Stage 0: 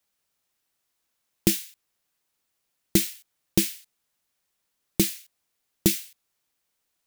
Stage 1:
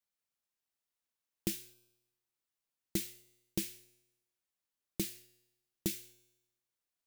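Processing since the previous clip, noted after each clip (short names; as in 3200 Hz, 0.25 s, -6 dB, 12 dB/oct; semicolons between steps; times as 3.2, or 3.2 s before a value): resonator 120 Hz, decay 0.97 s, harmonics all, mix 50%; gain -8.5 dB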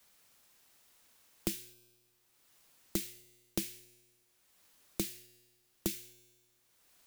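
three-band squash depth 70%; gain +3 dB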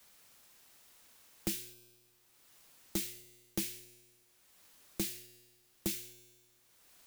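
soft clip -30.5 dBFS, distortion -8 dB; gain +4 dB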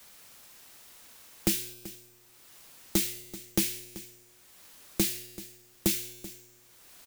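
echo 0.384 s -17 dB; gain +9 dB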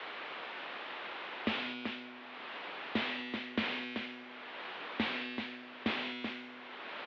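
overdrive pedal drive 28 dB, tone 1600 Hz, clips at -17 dBFS; mistuned SSB -110 Hz 360–3600 Hz; gain +1.5 dB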